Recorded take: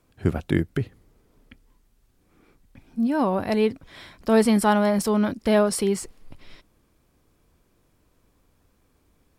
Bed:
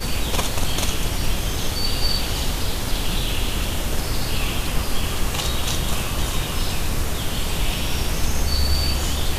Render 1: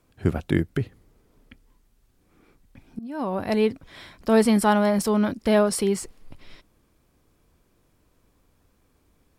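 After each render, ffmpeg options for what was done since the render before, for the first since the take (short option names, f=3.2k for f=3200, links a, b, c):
-filter_complex "[0:a]asplit=2[a][b];[a]atrim=end=2.99,asetpts=PTS-STARTPTS,afade=t=out:st=2.986:d=0.004:c=hsin:silence=0.0841395[c];[b]atrim=start=2.99,asetpts=PTS-STARTPTS,afade=t=in:d=0.54:silence=0.0841395[d];[c][d]concat=n=2:v=0:a=1"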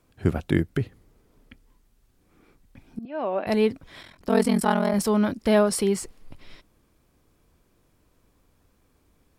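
-filter_complex "[0:a]asettb=1/sr,asplit=3[a][b][c];[a]atrim=end=3.054[d];[b]atrim=start=3.05:end=3.47,asetpts=PTS-STARTPTS,afade=t=in:d=0.004:c=qsin,afade=t=out:st=0.416:d=0.004:c=qsin,highpass=f=250:w=0.5412,highpass=f=250:w=1.3066,equalizer=f=270:t=q:w=4:g=-7,equalizer=f=630:t=q:w=4:g=7,equalizer=f=970:t=q:w=4:g=-3,equalizer=f=2.6k:t=q:w=4:g=7,lowpass=f=3.5k:w=0.5412,lowpass=f=3.5k:w=1.3066[e];[c]atrim=start=3.466[f];[d][e]acrossfade=d=0.004:c1=hsin:c2=qsin[g];[g][f]acrossfade=d=0.004:c1=qsin:c2=hsin,asettb=1/sr,asplit=3[h][i][j];[h]atrim=end=4.014[k];[i]atrim=start=4.01:end=4.94,asetpts=PTS-STARTPTS,afade=t=in:d=0.004:c=qsin,afade=t=out:st=0.926:d=0.004:c=qsin,aeval=exprs='val(0)*sin(2*PI*21*n/s)':c=same[l];[j]atrim=start=4.936[m];[k][l]acrossfade=d=0.004:c1=hsin:c2=qsin[n];[n][m]acrossfade=d=0.004:c1=qsin:c2=hsin"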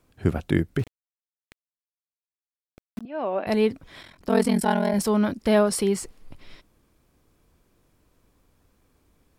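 -filter_complex "[0:a]asettb=1/sr,asplit=3[a][b][c];[a]atrim=end=0.794[d];[b]atrim=start=0.79:end=3.01,asetpts=PTS-STARTPTS,afade=t=in:d=0.004:c=qsin,afade=t=out:st=2.216:d=0.004:c=qsin,aeval=exprs='val(0)*gte(abs(val(0)),0.0141)':c=same[e];[c]atrim=start=3.006[f];[d][e]acrossfade=d=0.004:c1=hsin:c2=qsin[g];[g][f]acrossfade=d=0.004:c1=qsin:c2=hsin,asettb=1/sr,asplit=3[h][i][j];[h]atrim=end=4.504[k];[i]atrim=start=4.5:end=5,asetpts=PTS-STARTPTS,afade=t=in:d=0.004:c=qsin,afade=t=out:st=0.496:d=0.004:c=qsin,asuperstop=centerf=1200:order=4:qfactor=4.5[l];[j]atrim=start=4.996[m];[k][l]acrossfade=d=0.004:c1=hsin:c2=qsin[n];[n][m]acrossfade=d=0.004:c1=qsin:c2=hsin"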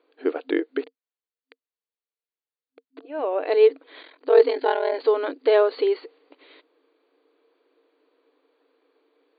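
-af "afftfilt=real='re*between(b*sr/4096,260,4700)':imag='im*between(b*sr/4096,260,4700)':win_size=4096:overlap=0.75,equalizer=f=460:t=o:w=0.24:g=12"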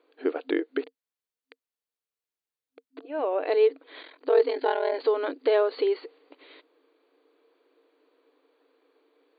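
-af "acompressor=threshold=-26dB:ratio=1.5"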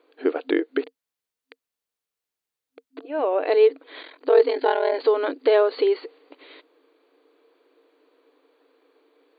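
-af "volume=4.5dB"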